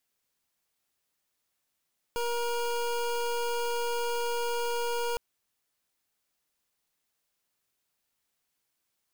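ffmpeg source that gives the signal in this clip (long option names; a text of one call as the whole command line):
ffmpeg -f lavfi -i "aevalsrc='0.0316*(2*lt(mod(474*t,1),0.25)-1)':duration=3.01:sample_rate=44100" out.wav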